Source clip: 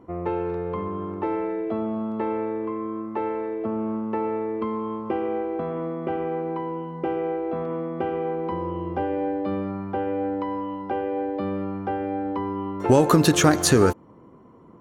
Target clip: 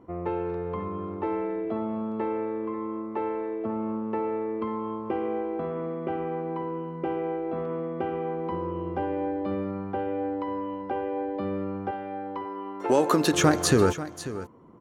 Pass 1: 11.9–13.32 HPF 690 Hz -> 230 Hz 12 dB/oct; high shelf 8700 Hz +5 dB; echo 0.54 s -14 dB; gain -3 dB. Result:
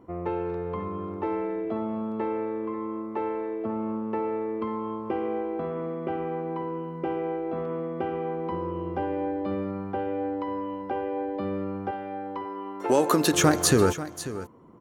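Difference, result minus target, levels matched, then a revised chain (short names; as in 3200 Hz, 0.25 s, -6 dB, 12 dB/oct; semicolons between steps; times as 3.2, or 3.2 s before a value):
8000 Hz band +3.5 dB
11.9–13.32 HPF 690 Hz -> 230 Hz 12 dB/oct; high shelf 8700 Hz -4.5 dB; echo 0.54 s -14 dB; gain -3 dB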